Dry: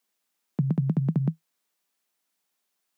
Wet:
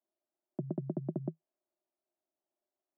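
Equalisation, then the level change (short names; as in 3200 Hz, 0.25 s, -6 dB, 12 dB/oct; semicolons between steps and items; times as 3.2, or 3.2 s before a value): double band-pass 470 Hz, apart 0.74 oct; air absorption 490 m; +5.5 dB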